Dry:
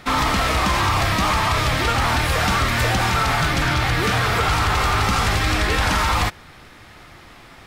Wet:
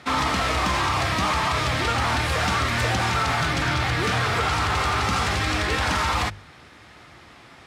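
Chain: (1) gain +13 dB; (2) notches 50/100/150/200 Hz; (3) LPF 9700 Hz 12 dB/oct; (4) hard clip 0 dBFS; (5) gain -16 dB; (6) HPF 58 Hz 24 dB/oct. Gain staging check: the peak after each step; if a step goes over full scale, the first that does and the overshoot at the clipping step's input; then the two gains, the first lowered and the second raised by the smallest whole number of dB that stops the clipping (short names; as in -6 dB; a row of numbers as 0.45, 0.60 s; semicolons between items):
+2.5, +4.0, +4.0, 0.0, -16.0, -11.5 dBFS; step 1, 4.0 dB; step 1 +9 dB, step 5 -12 dB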